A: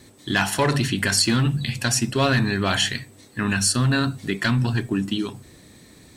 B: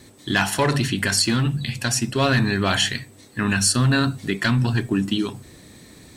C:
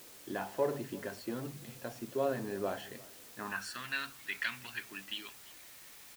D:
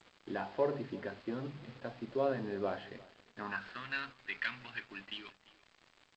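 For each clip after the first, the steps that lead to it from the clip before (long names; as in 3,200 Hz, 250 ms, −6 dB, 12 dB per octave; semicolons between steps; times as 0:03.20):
speech leveller 2 s
band-pass filter sweep 510 Hz → 2,300 Hz, 0:03.28–0:03.84; bit-depth reduction 8 bits, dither triangular; single-tap delay 345 ms −21.5 dB; level −6 dB
running median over 9 samples; downsampling to 11,025 Hz; G.722 64 kbit/s 16,000 Hz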